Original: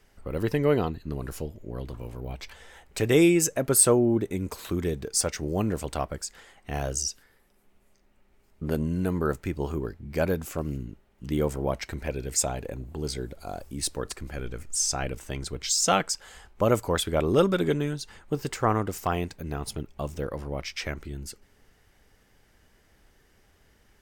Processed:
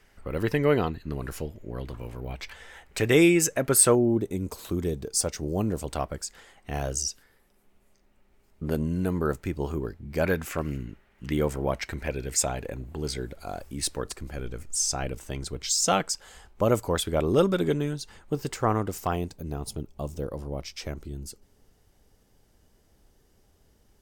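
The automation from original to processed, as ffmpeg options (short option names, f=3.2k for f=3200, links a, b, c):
-af "asetnsamples=n=441:p=0,asendcmd='3.95 equalizer g -7;5.9 equalizer g -1;10.24 equalizer g 10;11.33 equalizer g 3.5;14.02 equalizer g -3;19.16 equalizer g -11',equalizer=f=1.9k:t=o:w=1.5:g=4.5"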